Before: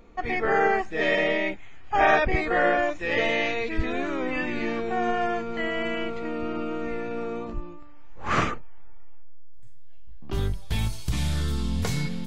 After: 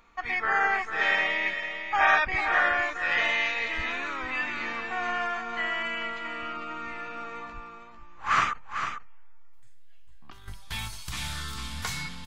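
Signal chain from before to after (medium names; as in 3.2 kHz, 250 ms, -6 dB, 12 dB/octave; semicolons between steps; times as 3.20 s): resonant low shelf 730 Hz -12.5 dB, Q 1.5; 8.53–10.48 s: compressor with a negative ratio -41 dBFS, ratio -0.5; on a send: delay 449 ms -8 dB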